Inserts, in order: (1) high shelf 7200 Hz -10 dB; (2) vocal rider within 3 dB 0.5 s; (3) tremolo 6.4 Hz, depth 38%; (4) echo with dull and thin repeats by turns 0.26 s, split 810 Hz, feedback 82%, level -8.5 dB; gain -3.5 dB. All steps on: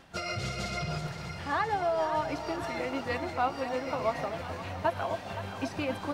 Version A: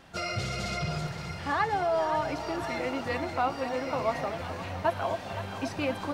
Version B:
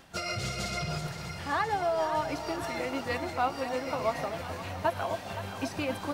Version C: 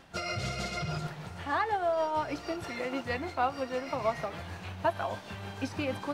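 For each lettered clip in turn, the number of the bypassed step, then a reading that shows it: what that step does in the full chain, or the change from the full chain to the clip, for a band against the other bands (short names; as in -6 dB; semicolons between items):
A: 3, loudness change +1.5 LU; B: 1, 8 kHz band +4.5 dB; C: 4, echo-to-direct -7.0 dB to none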